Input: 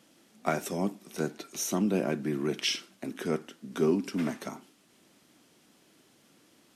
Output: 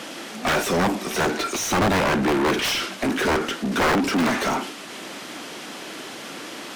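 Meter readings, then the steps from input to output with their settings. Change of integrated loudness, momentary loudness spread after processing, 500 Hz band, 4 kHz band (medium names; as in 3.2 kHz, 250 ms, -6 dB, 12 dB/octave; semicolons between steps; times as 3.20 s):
+9.5 dB, 14 LU, +8.0 dB, +10.5 dB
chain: integer overflow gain 22.5 dB; overdrive pedal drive 31 dB, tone 2.7 kHz, clips at -22.5 dBFS; trim +8 dB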